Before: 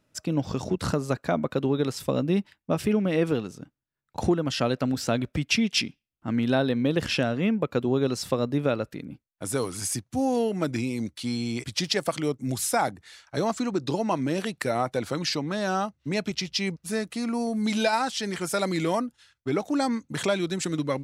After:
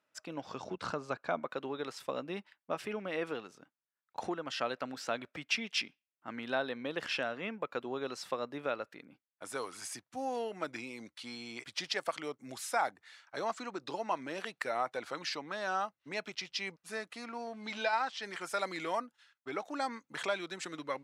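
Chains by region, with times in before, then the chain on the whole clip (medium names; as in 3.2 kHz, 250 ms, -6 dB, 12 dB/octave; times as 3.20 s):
0.55–1.40 s: low-pass 7 kHz + bass shelf 150 Hz +9 dB + band-stop 1.9 kHz, Q 10
17.26–18.22 s: companding laws mixed up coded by A + low-pass 5.5 kHz
whole clip: high-pass 1.2 kHz 12 dB/octave; tilt EQ -4.5 dB/octave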